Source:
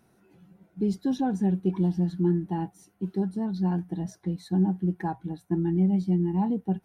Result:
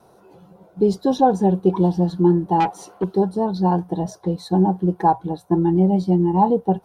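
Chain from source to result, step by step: gate with hold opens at -58 dBFS; graphic EQ 250/500/1000/2000/4000 Hz -5/+11/+10/-9/+5 dB; 2.60–3.04 s: overdrive pedal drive 20 dB, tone 2.6 kHz, clips at -17.5 dBFS; trim +7 dB

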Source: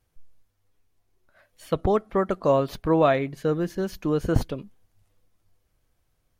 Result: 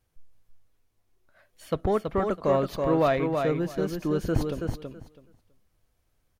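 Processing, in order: in parallel at -3 dB: saturation -18.5 dBFS, distortion -12 dB; on the sum: feedback delay 327 ms, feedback 17%, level -5 dB; trim -6.5 dB

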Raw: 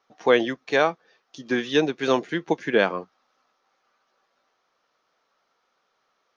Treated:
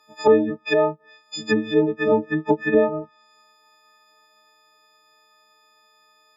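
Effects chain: partials quantised in pitch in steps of 6 st; low-pass that closes with the level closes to 530 Hz, closed at -17.5 dBFS; trim +4.5 dB

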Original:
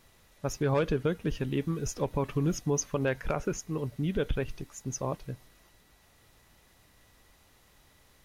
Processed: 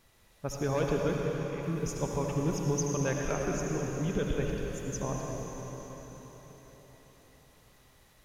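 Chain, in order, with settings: 1.16–1.63 s: Butterworth band-pass 2.2 kHz, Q 4.2; reverberation RT60 4.9 s, pre-delay 58 ms, DRR -1 dB; trim -3.5 dB

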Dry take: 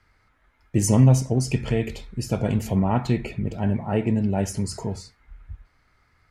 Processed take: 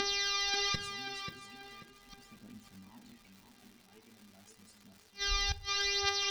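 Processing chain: mains buzz 400 Hz, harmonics 15, -39 dBFS -4 dB/octave; graphic EQ 125/250/500/2000/4000/8000 Hz -10/+10/-10/+3/+9/+9 dB; inverted gate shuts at -20 dBFS, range -38 dB; phaser 0.4 Hz, delay 2.9 ms, feedback 62%; crackle 250 per s -47 dBFS; tape echo 537 ms, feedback 41%, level -5 dB, low-pass 2.7 kHz; on a send at -14 dB: reverberation RT60 0.40 s, pre-delay 4 ms

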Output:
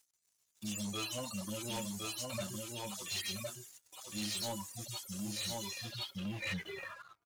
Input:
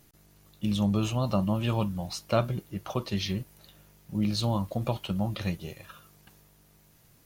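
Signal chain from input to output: harmonic-percussive separation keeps harmonic; peaking EQ 150 Hz -11 dB 0.5 oct; de-hum 161.3 Hz, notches 29; reverb removal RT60 0.85 s; gate -57 dBFS, range -12 dB; bass shelf 290 Hz +10 dB; delay 1061 ms -4.5 dB; band-pass sweep 7.2 kHz -> 1.2 kHz, 5.52–6.96 s; waveshaping leveller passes 3; trim +13.5 dB

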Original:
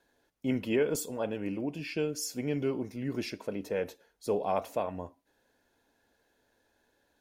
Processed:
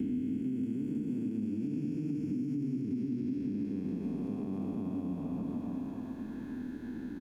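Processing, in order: spectral blur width 1000 ms; doubling 28 ms -14 dB; repeats whose band climbs or falls 133 ms, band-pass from 170 Hz, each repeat 0.7 oct, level 0 dB; peak limiter -28 dBFS, peak gain reduction 6 dB; compression, threshold -47 dBFS, peak gain reduction 13.5 dB; resonant low shelf 380 Hz +13 dB, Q 3; three bands compressed up and down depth 100%; trim -1.5 dB

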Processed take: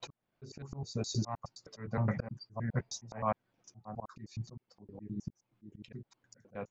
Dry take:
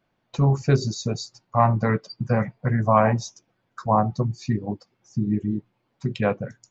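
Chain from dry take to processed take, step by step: slices played last to first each 104 ms, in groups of 4; slow attack 417 ms; trim -5.5 dB

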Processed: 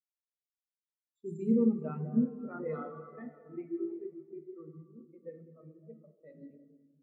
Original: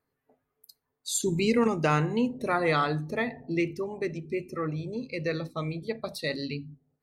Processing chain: local Wiener filter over 9 samples; plate-style reverb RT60 4.8 s, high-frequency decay 0.7×, DRR -1.5 dB; level-controlled noise filter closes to 350 Hz, open at -21 dBFS; spectral contrast expander 2.5:1; trim -6.5 dB

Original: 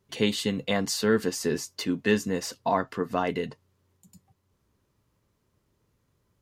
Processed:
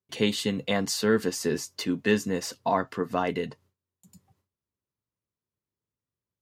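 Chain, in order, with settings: gate with hold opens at -59 dBFS; high-pass 63 Hz

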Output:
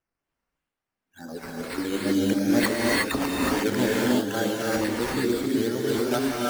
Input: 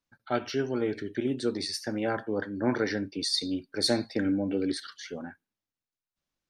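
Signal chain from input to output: reverse the whole clip; decimation with a swept rate 10×, swing 60% 2.2 Hz; gated-style reverb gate 390 ms rising, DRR -4.5 dB

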